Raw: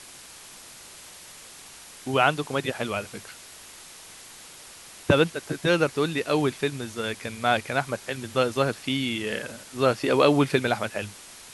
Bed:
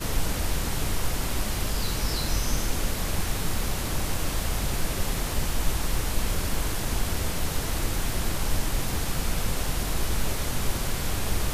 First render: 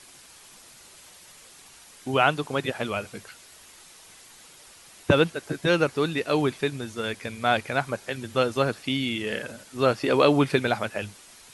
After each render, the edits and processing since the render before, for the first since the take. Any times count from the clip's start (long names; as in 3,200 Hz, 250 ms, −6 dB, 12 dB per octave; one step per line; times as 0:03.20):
broadband denoise 6 dB, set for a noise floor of −46 dBFS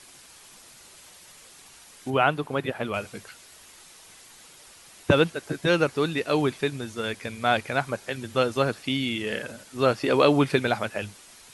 0:02.10–0:02.94: parametric band 6,500 Hz −10 dB 1.7 octaves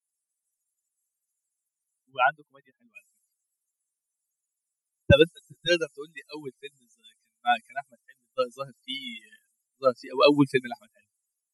spectral dynamics exaggerated over time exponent 3
multiband upward and downward expander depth 100%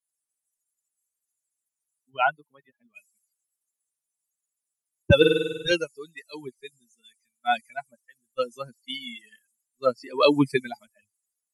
0:05.17–0:05.72: flutter between parallel walls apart 8.4 metres, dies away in 1.1 s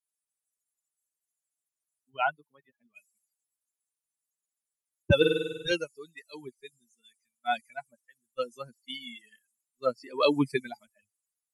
level −5 dB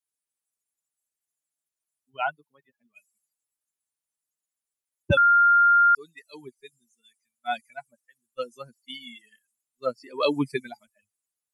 0:05.17–0:05.95: beep over 1,400 Hz −14 dBFS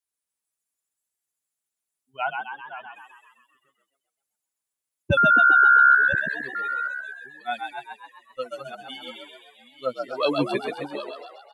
delay that plays each chunk backwards 625 ms, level −11.5 dB
on a send: echo with shifted repeats 131 ms, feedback 57%, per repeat +68 Hz, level −4.5 dB